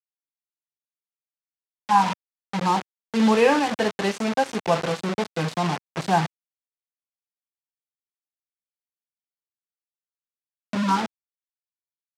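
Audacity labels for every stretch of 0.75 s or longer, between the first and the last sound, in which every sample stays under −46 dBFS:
6.260000	10.730000	silence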